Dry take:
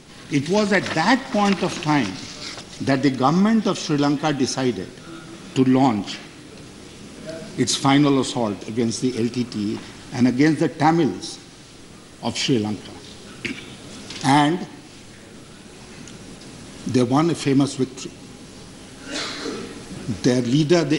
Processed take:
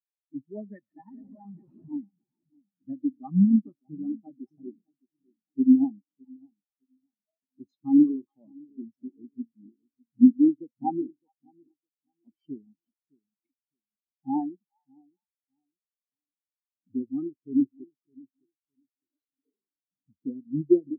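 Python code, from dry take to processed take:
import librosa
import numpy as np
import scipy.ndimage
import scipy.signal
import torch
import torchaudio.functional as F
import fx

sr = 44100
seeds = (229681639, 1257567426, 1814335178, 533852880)

y = fx.schmitt(x, sr, flips_db=-33.0, at=(1.09, 1.92))
y = fx.echo_split(y, sr, split_hz=860.0, low_ms=611, high_ms=419, feedback_pct=52, wet_db=-7.5)
y = fx.spectral_expand(y, sr, expansion=4.0)
y = y * 10.0 ** (-3.0 / 20.0)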